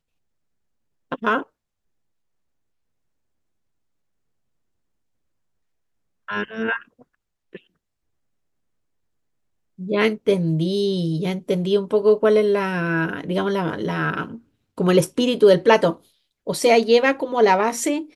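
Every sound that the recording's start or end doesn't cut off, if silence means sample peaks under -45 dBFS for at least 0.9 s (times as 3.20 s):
1.12–1.44 s
6.28–7.58 s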